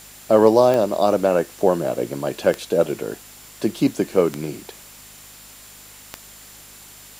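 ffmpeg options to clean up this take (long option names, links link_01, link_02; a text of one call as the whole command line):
ffmpeg -i in.wav -af "adeclick=threshold=4,bandreject=frequency=51.3:width_type=h:width=4,bandreject=frequency=102.6:width_type=h:width=4,bandreject=frequency=153.9:width_type=h:width=4,bandreject=frequency=205.2:width_type=h:width=4,bandreject=frequency=256.5:width_type=h:width=4,bandreject=frequency=7200:width=30,afftdn=noise_reduction=20:noise_floor=-44" out.wav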